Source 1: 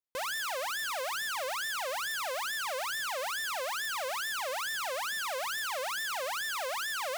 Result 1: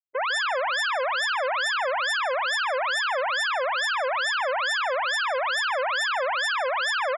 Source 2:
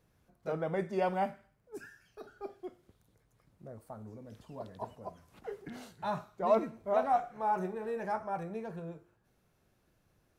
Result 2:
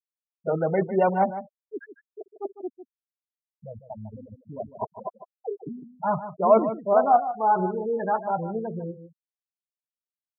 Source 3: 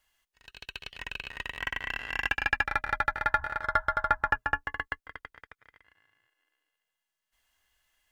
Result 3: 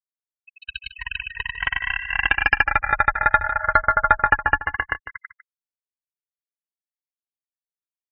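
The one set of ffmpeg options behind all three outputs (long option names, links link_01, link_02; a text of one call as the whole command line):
ffmpeg -i in.wav -filter_complex "[0:a]acontrast=64,afftfilt=real='re*gte(hypot(re,im),0.0562)':imag='im*gte(hypot(re,im),0.0562)':win_size=1024:overlap=0.75,asplit=2[link_01][link_02];[link_02]adelay=151.6,volume=-12dB,highshelf=frequency=4000:gain=-3.41[link_03];[link_01][link_03]amix=inputs=2:normalize=0,volume=3.5dB" out.wav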